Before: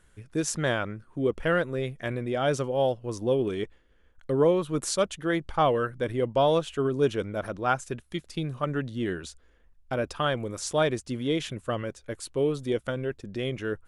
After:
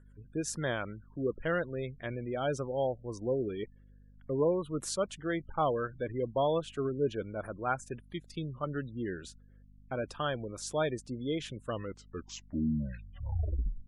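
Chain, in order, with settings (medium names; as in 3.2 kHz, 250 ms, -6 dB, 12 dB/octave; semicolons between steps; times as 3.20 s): tape stop on the ending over 2.22 s; spectral gate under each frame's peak -25 dB strong; hum 50 Hz, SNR 23 dB; trim -6.5 dB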